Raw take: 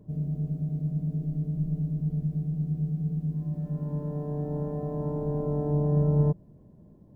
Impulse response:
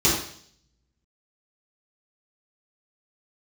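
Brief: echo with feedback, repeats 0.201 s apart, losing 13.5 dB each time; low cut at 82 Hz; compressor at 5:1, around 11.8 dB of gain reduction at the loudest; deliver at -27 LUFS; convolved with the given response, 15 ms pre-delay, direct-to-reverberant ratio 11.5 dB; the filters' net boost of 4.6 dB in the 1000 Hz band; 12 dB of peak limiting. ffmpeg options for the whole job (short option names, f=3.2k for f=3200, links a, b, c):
-filter_complex "[0:a]highpass=82,equalizer=f=1k:t=o:g=6,acompressor=threshold=-33dB:ratio=5,alimiter=level_in=13.5dB:limit=-24dB:level=0:latency=1,volume=-13.5dB,aecho=1:1:201|402:0.211|0.0444,asplit=2[a][b];[1:a]atrim=start_sample=2205,adelay=15[c];[b][c]afir=irnorm=-1:irlink=0,volume=-28.5dB[d];[a][d]amix=inputs=2:normalize=0,volume=16dB"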